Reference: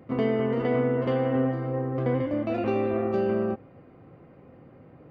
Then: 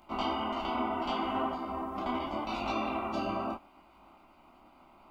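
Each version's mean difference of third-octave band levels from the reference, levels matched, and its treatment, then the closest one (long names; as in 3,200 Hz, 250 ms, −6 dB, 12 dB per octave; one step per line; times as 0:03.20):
9.0 dB: ceiling on every frequency bin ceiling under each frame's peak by 27 dB
phaser with its sweep stopped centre 470 Hz, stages 6
micro pitch shift up and down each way 26 cents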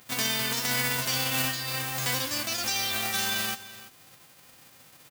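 17.5 dB: spectral envelope flattened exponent 0.1
single-tap delay 336 ms −16.5 dB
level −3.5 dB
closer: first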